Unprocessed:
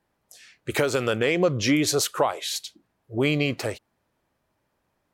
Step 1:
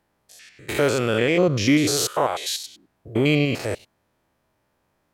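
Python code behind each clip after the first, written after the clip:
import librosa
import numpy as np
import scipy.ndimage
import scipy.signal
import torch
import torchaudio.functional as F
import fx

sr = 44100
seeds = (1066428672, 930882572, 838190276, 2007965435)

y = fx.spec_steps(x, sr, hold_ms=100)
y = y * 10.0 ** (5.0 / 20.0)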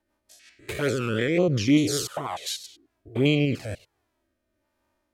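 y = fx.rotary_switch(x, sr, hz=5.5, then_hz=1.2, switch_at_s=2.51)
y = fx.env_flanger(y, sr, rest_ms=3.3, full_db=-15.5)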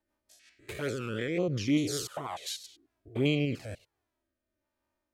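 y = fx.rider(x, sr, range_db=10, speed_s=2.0)
y = y * 10.0 ** (-8.5 / 20.0)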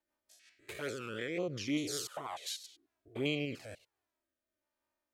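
y = fx.low_shelf(x, sr, hz=260.0, db=-10.5)
y = y * 10.0 ** (-3.0 / 20.0)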